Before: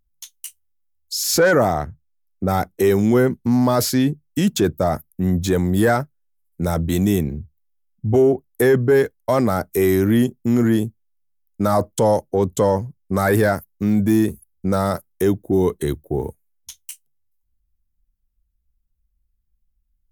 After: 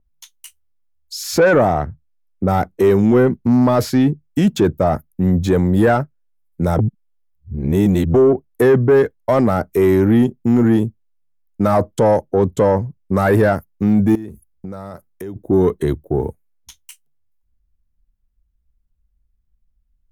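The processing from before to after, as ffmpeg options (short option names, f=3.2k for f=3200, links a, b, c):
-filter_complex "[0:a]asettb=1/sr,asplit=3[a][b][c];[a]atrim=end=14.154[d];[b]atrim=start=14.15:end=15.36,asetpts=PTS-STARTPTS,afade=t=in:d=0.004:c=qsin,afade=t=out:st=1.206:d=0.004:c=qsin,acompressor=threshold=-32dB:ratio=6:attack=3.2:release=140:knee=1:detection=peak[e];[c]atrim=start=15.356[f];[d][e]acrossfade=d=0.004:c1=hsin:c2=qsin[g];[g][f]acrossfade=d=0.004:c1=qsin:c2=hsin,asplit=3[h][i][j];[h]atrim=end=6.792[k];[i]atrim=start=6.788:end=8.142,asetpts=PTS-STARTPTS,areverse[l];[j]atrim=start=8.138[m];[k][l]acrossfade=d=0.004:c1=hsin:c2=hsin[n];[n][m]acrossfade=d=0.004:c1=hsin:c2=hsin,highshelf=f=3.3k:g=-11.5,acontrast=87,adynamicequalizer=threshold=0.0126:dfrequency=4500:dqfactor=0.7:tfrequency=4500:tqfactor=0.7:attack=5:release=100:ratio=0.375:range=2:mode=cutabove:tftype=highshelf,volume=-2.5dB"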